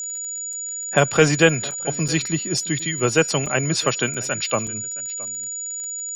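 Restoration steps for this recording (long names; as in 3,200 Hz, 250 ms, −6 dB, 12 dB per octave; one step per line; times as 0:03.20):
click removal
notch filter 6,900 Hz, Q 30
repair the gap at 0:00.53/0:01.71/0:02.08/0:02.79/0:03.46/0:04.14/0:04.67, 4.3 ms
echo removal 668 ms −20.5 dB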